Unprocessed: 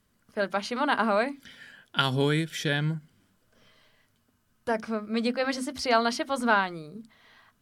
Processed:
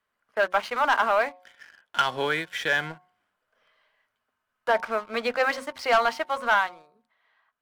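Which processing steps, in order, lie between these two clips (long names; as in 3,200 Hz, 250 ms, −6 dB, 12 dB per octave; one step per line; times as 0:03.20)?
three-way crossover with the lows and the highs turned down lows −22 dB, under 530 Hz, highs −15 dB, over 2,800 Hz
speech leveller within 5 dB 2 s
leveller curve on the samples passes 2
hum removal 181.5 Hz, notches 6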